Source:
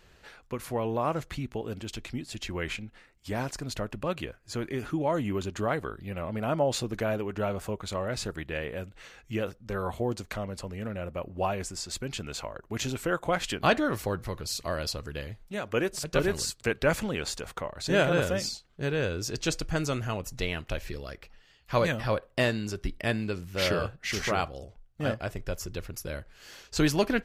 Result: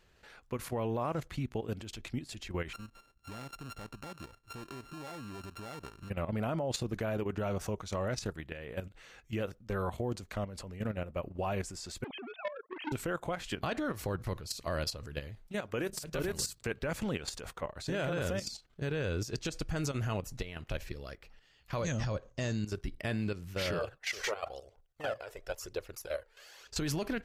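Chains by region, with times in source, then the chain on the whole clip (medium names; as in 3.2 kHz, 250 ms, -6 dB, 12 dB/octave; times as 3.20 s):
2.73–6.10 s: sorted samples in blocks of 32 samples + compression 3:1, threshold -40 dBFS + treble shelf 11 kHz -9.5 dB
7.43–8.22 s: peaking EQ 5.8 kHz +11 dB 0.29 oct + upward compressor, threshold -33 dBFS
12.04–12.92 s: formants replaced by sine waves + bass shelf 270 Hz +5.5 dB + transformer saturation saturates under 1.4 kHz
15.79–16.59 s: short-mantissa float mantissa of 8-bit + treble shelf 12 kHz +11 dB + hum notches 50/100/150/200 Hz
21.83–22.65 s: resonant low-pass 6.5 kHz, resonance Q 15 + bass shelf 350 Hz +8.5 dB
23.79–26.67 s: resonant low shelf 310 Hz -13.5 dB, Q 1.5 + phaser 1 Hz, delay 2.3 ms, feedback 48%
whole clip: dynamic bell 100 Hz, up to +3 dB, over -40 dBFS, Q 0.7; peak limiter -22.5 dBFS; level held to a coarse grid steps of 11 dB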